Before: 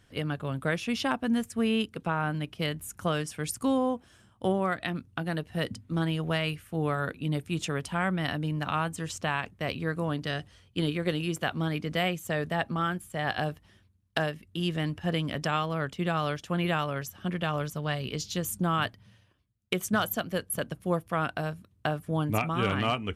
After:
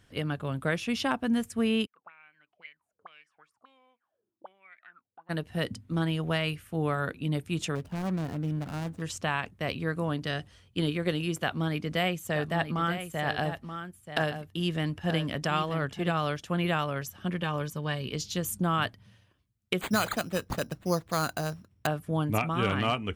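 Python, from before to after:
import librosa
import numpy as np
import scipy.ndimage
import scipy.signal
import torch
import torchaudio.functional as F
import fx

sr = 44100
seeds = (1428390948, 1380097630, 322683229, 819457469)

y = fx.auto_wah(x, sr, base_hz=270.0, top_hz=2300.0, q=19.0, full_db=-25.5, direction='up', at=(1.85, 5.29), fade=0.02)
y = fx.median_filter(y, sr, points=41, at=(7.75, 9.02))
y = fx.echo_single(y, sr, ms=931, db=-9.5, at=(12.31, 16.1), fade=0.02)
y = fx.notch_comb(y, sr, f0_hz=680.0, at=(17.41, 18.12))
y = fx.resample_bad(y, sr, factor=8, down='none', up='hold', at=(19.81, 21.87))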